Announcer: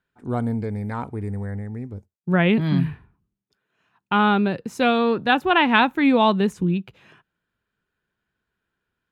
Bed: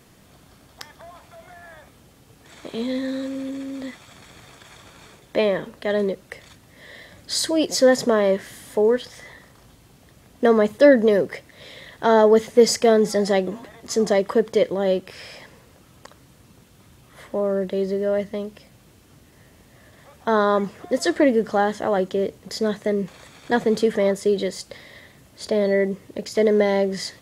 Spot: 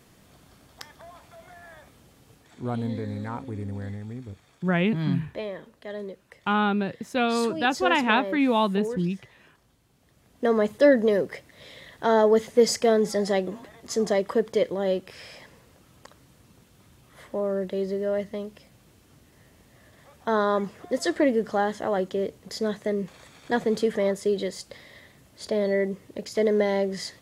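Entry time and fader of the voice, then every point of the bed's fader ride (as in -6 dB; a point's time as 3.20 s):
2.35 s, -5.0 dB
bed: 2.34 s -3.5 dB
2.62 s -13.5 dB
9.86 s -13.5 dB
10.63 s -4.5 dB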